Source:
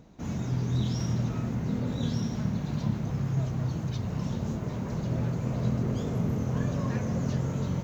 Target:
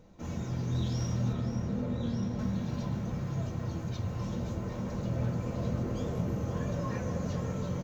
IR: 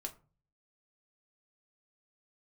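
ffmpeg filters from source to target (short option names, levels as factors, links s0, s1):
-filter_complex "[0:a]asettb=1/sr,asplit=3[s0][s1][s2];[s0]atrim=end=1.334[s3];[s1]atrim=start=1.33:end=2.39,asetpts=PTS-STARTPTS,afade=t=in:d=0.004:c=qsin,afade=t=out:st=1.056:d=0.004:c=qsin,highshelf=f=3400:g=-10[s4];[s2]atrim=start=2.386[s5];[s3][s4]acrossfade=d=0.004:c1=hsin:c2=qsin[s6];[s6][s5]acrossfade=d=0.004:c1=qsin:c2=hsin,aecho=1:1:526:0.299[s7];[1:a]atrim=start_sample=2205,asetrate=74970,aresample=44100[s8];[s7][s8]afir=irnorm=-1:irlink=0,volume=1.58"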